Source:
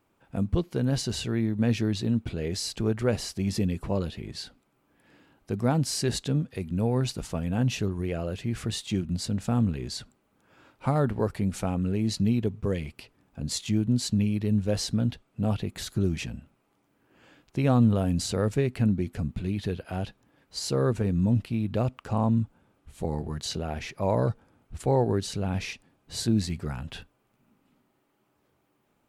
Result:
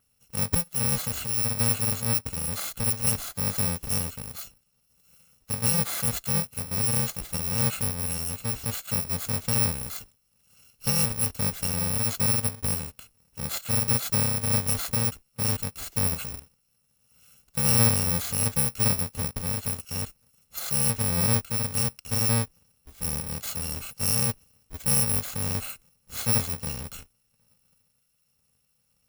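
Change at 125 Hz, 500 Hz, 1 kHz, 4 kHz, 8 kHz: -2.5 dB, -7.0 dB, -1.0 dB, +3.0 dB, +12.0 dB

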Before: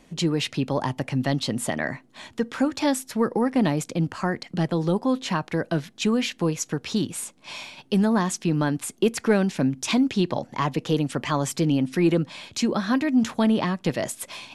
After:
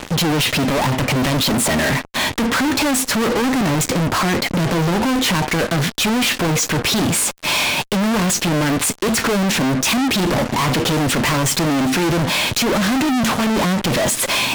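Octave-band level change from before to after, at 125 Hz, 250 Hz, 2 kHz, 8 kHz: +6.5 dB, +4.5 dB, +12.5 dB, +13.5 dB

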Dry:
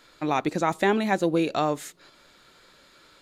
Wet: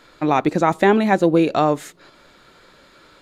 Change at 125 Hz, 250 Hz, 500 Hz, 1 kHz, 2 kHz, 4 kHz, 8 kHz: +8.0 dB, +8.0 dB, +7.5 dB, +7.0 dB, +5.5 dB, +2.5 dB, +1.0 dB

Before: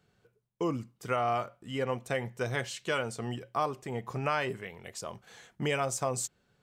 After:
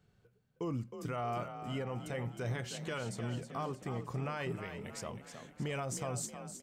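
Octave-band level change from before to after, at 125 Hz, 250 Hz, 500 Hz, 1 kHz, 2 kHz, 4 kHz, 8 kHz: -0.5 dB, -3.0 dB, -7.5 dB, -8.0 dB, -8.5 dB, -7.0 dB, -5.5 dB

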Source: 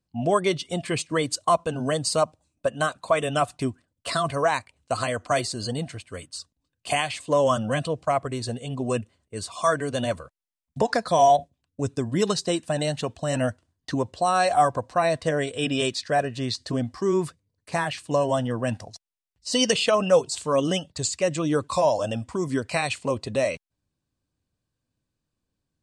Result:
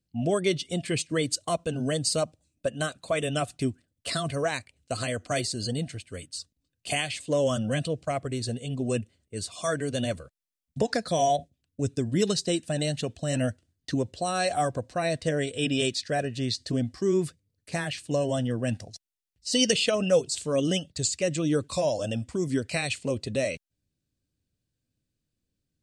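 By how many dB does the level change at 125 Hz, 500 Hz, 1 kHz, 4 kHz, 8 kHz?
0.0 dB, -4.0 dB, -9.0 dB, -1.0 dB, 0.0 dB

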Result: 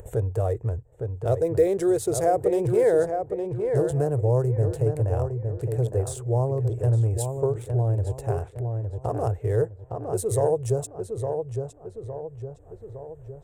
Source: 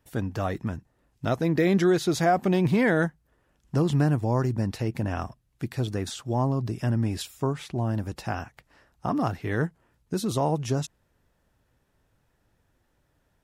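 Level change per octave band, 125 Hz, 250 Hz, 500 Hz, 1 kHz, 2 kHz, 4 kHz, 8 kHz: +3.5 dB, -5.0 dB, +6.0 dB, -1.5 dB, under -10 dB, under -10 dB, +3.5 dB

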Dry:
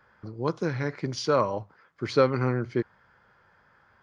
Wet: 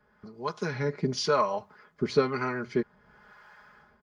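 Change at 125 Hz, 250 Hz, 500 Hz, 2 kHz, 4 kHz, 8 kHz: -5.5 dB, -2.0 dB, -2.0 dB, +0.5 dB, +1.5 dB, no reading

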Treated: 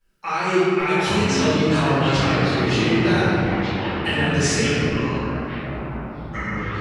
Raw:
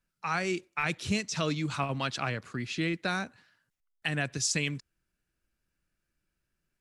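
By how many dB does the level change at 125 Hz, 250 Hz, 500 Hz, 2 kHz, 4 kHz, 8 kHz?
+14.0 dB, +15.0 dB, +16.5 dB, +10.5 dB, +11.0 dB, +6.0 dB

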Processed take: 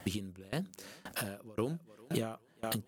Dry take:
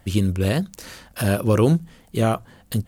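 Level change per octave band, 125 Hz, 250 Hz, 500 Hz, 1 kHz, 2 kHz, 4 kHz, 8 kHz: -20.5 dB, -16.5 dB, -16.5 dB, -15.5 dB, -12.5 dB, -9.5 dB, -9.5 dB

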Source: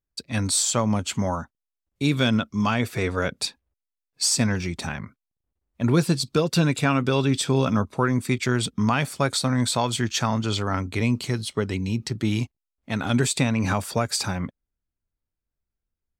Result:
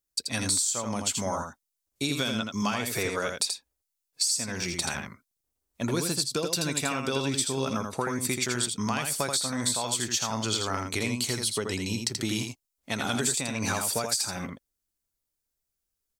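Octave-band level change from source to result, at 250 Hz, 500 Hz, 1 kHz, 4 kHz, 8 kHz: -8.0 dB, -5.5 dB, -5.0 dB, -1.0 dB, +1.0 dB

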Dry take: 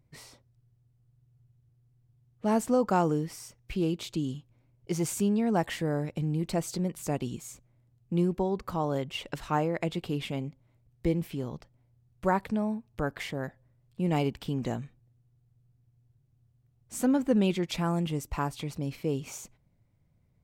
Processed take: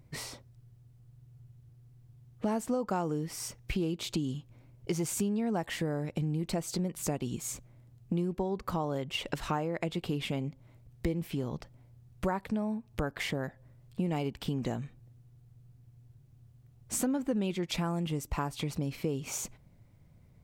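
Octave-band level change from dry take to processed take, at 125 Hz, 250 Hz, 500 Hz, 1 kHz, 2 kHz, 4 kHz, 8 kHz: -2.5 dB, -3.5 dB, -4.5 dB, -5.0 dB, -1.5 dB, +0.5 dB, +2.5 dB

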